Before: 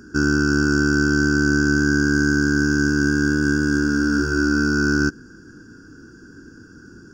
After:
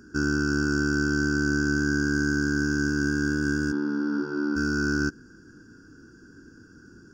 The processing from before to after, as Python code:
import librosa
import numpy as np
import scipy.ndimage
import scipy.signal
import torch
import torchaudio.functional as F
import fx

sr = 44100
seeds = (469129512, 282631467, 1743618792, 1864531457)

y = fx.cabinet(x, sr, low_hz=180.0, low_slope=24, high_hz=3900.0, hz=(900.0, 1600.0, 2600.0), db=(9, -9, -8), at=(3.71, 4.55), fade=0.02)
y = y * 10.0 ** (-6.5 / 20.0)